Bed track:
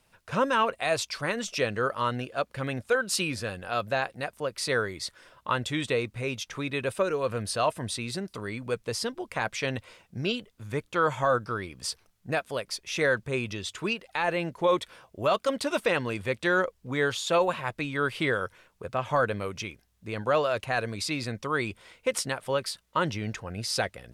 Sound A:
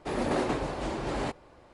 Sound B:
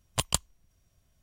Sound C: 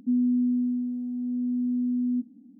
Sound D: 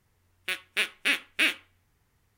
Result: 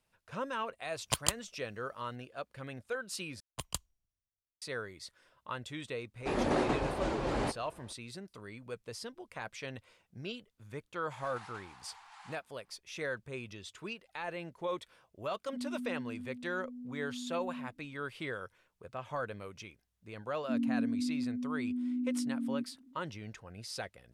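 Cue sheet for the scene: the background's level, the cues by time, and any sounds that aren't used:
bed track -12.5 dB
0.94 s: add B -3 dB + high-pass 110 Hz 6 dB/octave
3.40 s: replace with B -14.5 dB + three bands expanded up and down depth 100%
6.20 s: add A -1.5 dB + treble shelf 8.6 kHz -7 dB
11.05 s: add A -15.5 dB + steep high-pass 780 Hz 72 dB/octave
15.46 s: add C -16.5 dB
20.42 s: add C -8 dB + formants replaced by sine waves
not used: D

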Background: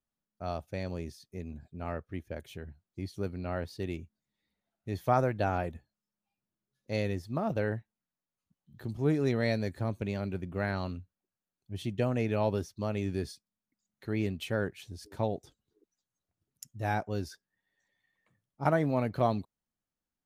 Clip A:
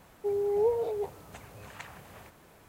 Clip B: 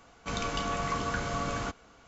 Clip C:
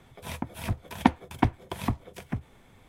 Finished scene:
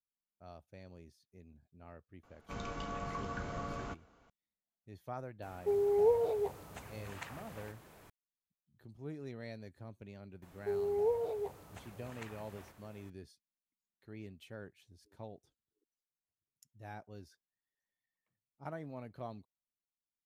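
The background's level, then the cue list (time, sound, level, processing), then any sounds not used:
background -17 dB
2.23 s: add B -7.5 dB + treble shelf 2.1 kHz -9 dB
5.42 s: add A -1.5 dB
10.42 s: add A -5.5 dB
not used: C

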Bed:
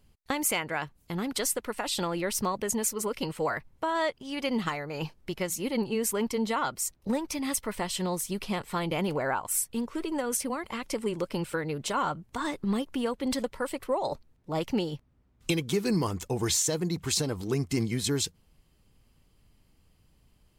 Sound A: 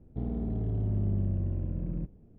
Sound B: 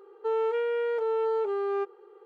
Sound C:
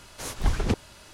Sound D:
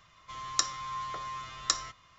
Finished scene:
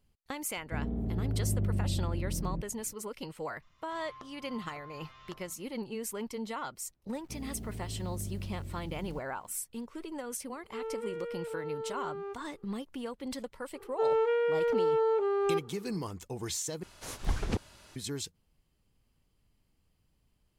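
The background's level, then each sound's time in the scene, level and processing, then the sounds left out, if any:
bed -9 dB
0.56 s: add A -1.5 dB
3.62 s: add D -10 dB + low-pass that closes with the level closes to 700 Hz, closed at -32 dBFS
7.14 s: add A -10 dB + bit crusher 9-bit
10.49 s: add B -11 dB + band-stop 1 kHz, Q 5.9
13.74 s: add B
16.83 s: replace with C -6.5 dB

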